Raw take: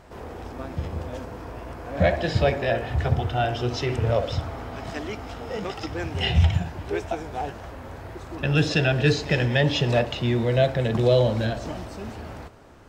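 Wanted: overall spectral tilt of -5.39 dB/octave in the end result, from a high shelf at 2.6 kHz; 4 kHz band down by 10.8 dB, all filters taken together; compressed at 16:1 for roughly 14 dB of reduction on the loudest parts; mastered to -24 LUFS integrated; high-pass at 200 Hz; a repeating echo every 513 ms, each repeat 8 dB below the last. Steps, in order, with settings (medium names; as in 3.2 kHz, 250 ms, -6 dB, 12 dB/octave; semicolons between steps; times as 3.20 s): high-pass 200 Hz; treble shelf 2.6 kHz -8.5 dB; peaking EQ 4 kHz -8 dB; compression 16:1, threshold -30 dBFS; feedback delay 513 ms, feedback 40%, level -8 dB; trim +12 dB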